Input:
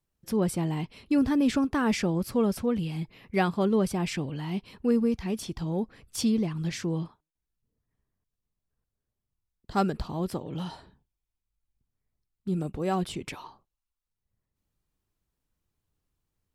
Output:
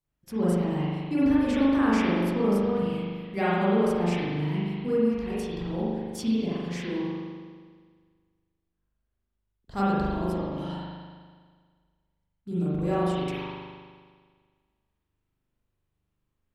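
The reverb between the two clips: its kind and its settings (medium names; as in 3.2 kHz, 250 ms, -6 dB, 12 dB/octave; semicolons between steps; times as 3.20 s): spring tank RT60 1.7 s, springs 40 ms, chirp 75 ms, DRR -9.5 dB; trim -7.5 dB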